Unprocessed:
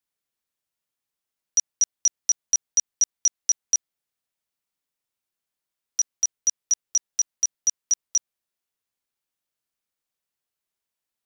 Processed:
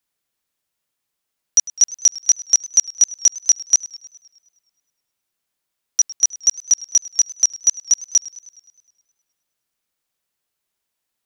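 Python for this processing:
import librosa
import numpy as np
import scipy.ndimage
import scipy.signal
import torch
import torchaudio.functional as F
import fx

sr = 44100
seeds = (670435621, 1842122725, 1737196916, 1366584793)

y = fx.echo_warbled(x, sr, ms=104, feedback_pct=61, rate_hz=2.8, cents=78, wet_db=-19.5)
y = y * librosa.db_to_amplitude(7.0)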